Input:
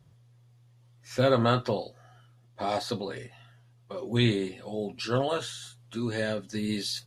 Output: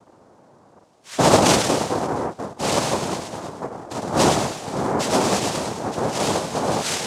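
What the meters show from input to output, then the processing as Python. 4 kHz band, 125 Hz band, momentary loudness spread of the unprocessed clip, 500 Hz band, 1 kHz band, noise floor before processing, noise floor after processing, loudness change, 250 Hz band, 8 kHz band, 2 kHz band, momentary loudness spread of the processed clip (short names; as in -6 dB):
+9.0 dB, +3.5 dB, 15 LU, +8.0 dB, +13.0 dB, -60 dBFS, -53 dBFS, +8.0 dB, +7.5 dB, +19.5 dB, +8.5 dB, 14 LU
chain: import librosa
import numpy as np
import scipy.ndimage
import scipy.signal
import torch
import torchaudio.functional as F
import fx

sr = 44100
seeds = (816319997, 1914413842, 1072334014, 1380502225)

y = fx.echo_split(x, sr, split_hz=440.0, low_ms=703, high_ms=105, feedback_pct=52, wet_db=-5.0)
y = fx.noise_vocoder(y, sr, seeds[0], bands=2)
y = y * librosa.db_to_amplitude(7.0)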